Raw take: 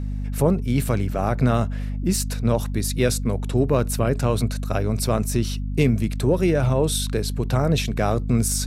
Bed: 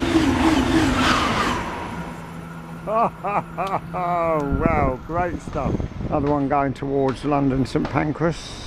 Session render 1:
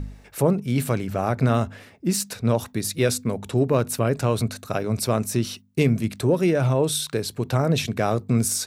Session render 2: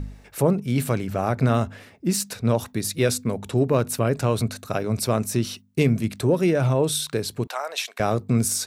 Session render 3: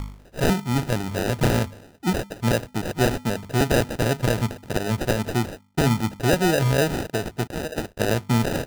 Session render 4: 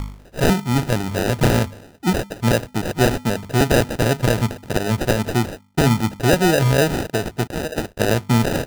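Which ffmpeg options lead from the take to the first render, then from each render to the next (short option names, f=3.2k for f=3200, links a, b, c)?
-af "bandreject=f=50:t=h:w=4,bandreject=f=100:t=h:w=4,bandreject=f=150:t=h:w=4,bandreject=f=200:t=h:w=4,bandreject=f=250:t=h:w=4"
-filter_complex "[0:a]asettb=1/sr,asplit=3[a][b][c];[a]atrim=end=7.474[d];[b]atrim=start=7.47:end=8,asetpts=PTS-STARTPTS,afade=t=in:d=0.004:c=qsin,afade=t=out:st=0.526:d=0.004:c=qsin,highpass=f=700:w=0.5412,highpass=f=700:w=1.3066[e];[c]atrim=start=7.996[f];[d][e]acrossfade=d=0.004:c1=hsin:c2=qsin[g];[g][f]acrossfade=d=0.004:c1=qsin:c2=hsin"
-af "acrusher=samples=40:mix=1:aa=0.000001,aeval=exprs='(mod(2.99*val(0)+1,2)-1)/2.99':c=same"
-af "volume=4dB"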